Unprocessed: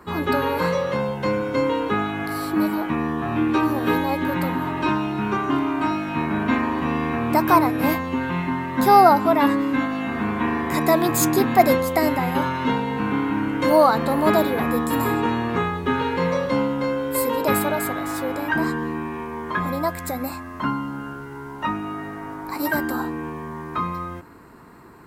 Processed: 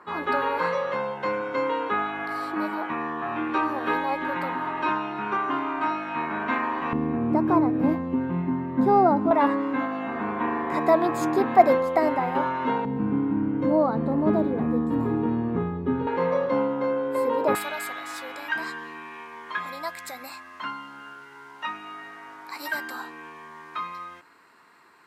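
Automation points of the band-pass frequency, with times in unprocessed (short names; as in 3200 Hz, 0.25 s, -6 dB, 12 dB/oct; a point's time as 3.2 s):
band-pass, Q 0.71
1200 Hz
from 6.93 s 250 Hz
from 9.31 s 720 Hz
from 12.85 s 200 Hz
from 16.07 s 640 Hz
from 17.55 s 3200 Hz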